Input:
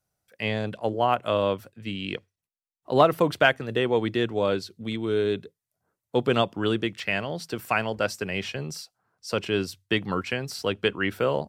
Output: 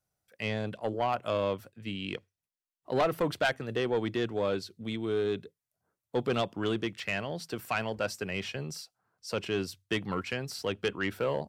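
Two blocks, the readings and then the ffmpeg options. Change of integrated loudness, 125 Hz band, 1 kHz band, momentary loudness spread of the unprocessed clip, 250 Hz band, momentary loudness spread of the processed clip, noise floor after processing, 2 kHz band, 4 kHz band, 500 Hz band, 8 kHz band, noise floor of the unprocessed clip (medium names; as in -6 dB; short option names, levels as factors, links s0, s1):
-6.5 dB, -5.5 dB, -7.5 dB, 12 LU, -5.5 dB, 9 LU, under -85 dBFS, -7.0 dB, -6.5 dB, -6.0 dB, -3.5 dB, under -85 dBFS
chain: -af "asoftclip=type=tanh:threshold=0.15,volume=0.631"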